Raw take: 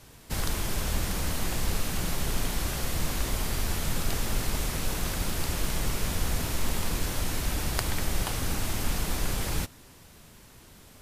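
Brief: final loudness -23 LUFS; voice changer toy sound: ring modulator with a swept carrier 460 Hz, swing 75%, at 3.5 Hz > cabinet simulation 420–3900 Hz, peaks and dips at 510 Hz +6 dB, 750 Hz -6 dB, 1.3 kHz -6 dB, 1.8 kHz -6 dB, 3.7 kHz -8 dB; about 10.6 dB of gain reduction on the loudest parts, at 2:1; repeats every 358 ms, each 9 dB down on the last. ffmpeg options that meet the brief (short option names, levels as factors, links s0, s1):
-af "acompressor=threshold=0.00794:ratio=2,aecho=1:1:358|716|1074|1432:0.355|0.124|0.0435|0.0152,aeval=exprs='val(0)*sin(2*PI*460*n/s+460*0.75/3.5*sin(2*PI*3.5*n/s))':c=same,highpass=420,equalizer=f=510:t=q:w=4:g=6,equalizer=f=750:t=q:w=4:g=-6,equalizer=f=1300:t=q:w=4:g=-6,equalizer=f=1800:t=q:w=4:g=-6,equalizer=f=3700:t=q:w=4:g=-8,lowpass=f=3900:w=0.5412,lowpass=f=3900:w=1.3066,volume=10"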